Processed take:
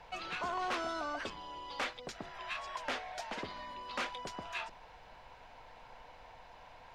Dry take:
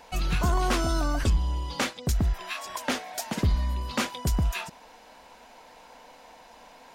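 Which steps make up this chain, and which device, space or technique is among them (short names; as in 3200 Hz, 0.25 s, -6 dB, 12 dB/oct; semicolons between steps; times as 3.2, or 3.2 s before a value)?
aircraft cabin announcement (BPF 500–3500 Hz; soft clip -25.5 dBFS, distortion -14 dB; brown noise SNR 18 dB); gain -3.5 dB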